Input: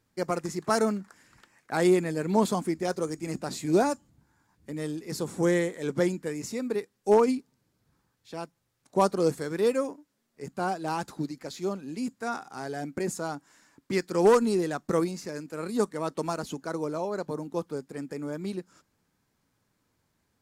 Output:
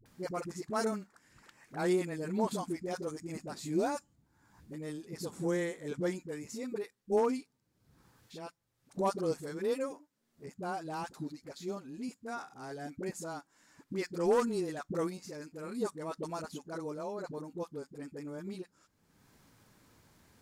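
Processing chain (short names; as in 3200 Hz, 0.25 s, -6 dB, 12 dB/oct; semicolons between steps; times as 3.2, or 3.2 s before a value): upward compressor, threshold -39 dBFS; dispersion highs, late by 59 ms, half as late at 430 Hz; gain -8 dB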